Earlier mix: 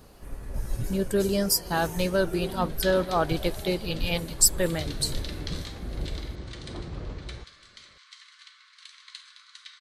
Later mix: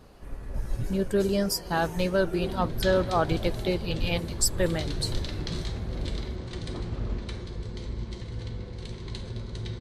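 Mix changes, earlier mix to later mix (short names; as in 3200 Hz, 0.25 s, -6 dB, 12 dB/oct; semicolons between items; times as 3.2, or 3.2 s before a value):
speech: add high shelf 6900 Hz -11.5 dB; second sound: remove steep high-pass 1100 Hz 96 dB/oct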